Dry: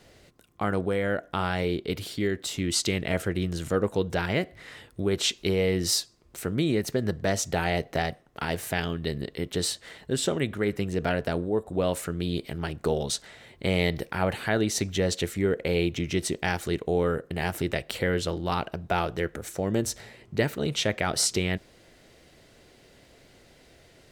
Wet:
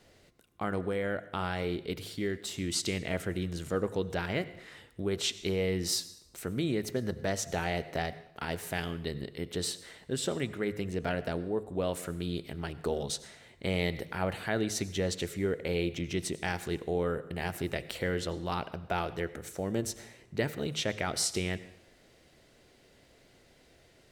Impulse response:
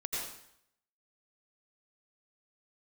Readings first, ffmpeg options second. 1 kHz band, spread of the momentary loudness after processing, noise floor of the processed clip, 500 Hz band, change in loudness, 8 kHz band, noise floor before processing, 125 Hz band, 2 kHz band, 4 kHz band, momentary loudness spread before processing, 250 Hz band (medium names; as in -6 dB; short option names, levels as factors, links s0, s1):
-5.5 dB, 7 LU, -62 dBFS, -5.5 dB, -5.5 dB, -5.5 dB, -57 dBFS, -6.0 dB, -5.5 dB, -5.5 dB, 7 LU, -5.5 dB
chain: -filter_complex "[0:a]bandreject=f=52.08:t=h:w=4,bandreject=f=104.16:t=h:w=4,bandreject=f=156.24:t=h:w=4,asplit=2[s0][s1];[1:a]atrim=start_sample=2205[s2];[s1][s2]afir=irnorm=-1:irlink=0,volume=0.141[s3];[s0][s3]amix=inputs=2:normalize=0,volume=0.473"